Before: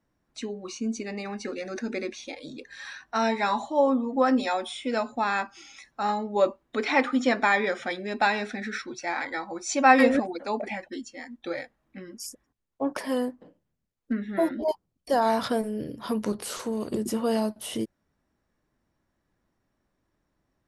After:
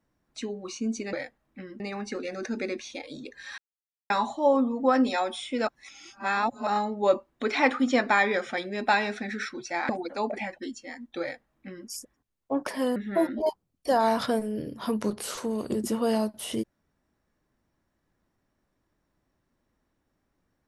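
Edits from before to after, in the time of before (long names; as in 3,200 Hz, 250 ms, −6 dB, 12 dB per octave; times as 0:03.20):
0:02.91–0:03.43: silence
0:05.00–0:06.00: reverse
0:09.22–0:10.19: remove
0:11.51–0:12.18: duplicate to 0:01.13
0:13.26–0:14.18: remove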